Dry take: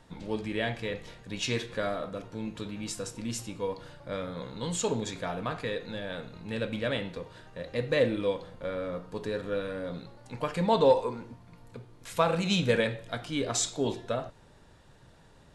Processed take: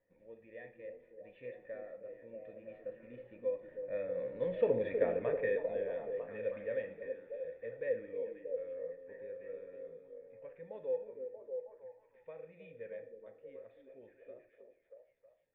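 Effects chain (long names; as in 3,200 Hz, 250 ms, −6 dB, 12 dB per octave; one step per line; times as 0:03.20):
source passing by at 0:04.89, 16 m/s, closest 7.6 metres
formant resonators in series e
echo through a band-pass that steps 317 ms, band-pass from 320 Hz, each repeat 0.7 octaves, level −2 dB
level +10 dB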